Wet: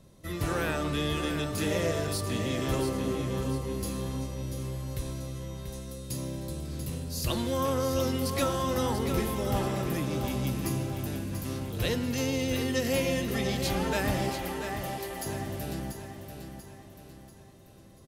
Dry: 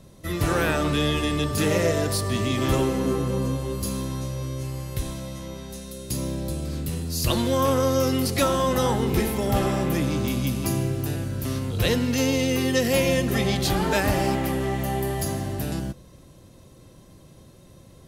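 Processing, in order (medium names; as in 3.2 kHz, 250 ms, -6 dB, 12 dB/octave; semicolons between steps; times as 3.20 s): 14.29–15.26 s: high-pass 430 Hz 12 dB/octave; on a send: feedback delay 688 ms, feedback 45%, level -8 dB; on the sum: trim -7 dB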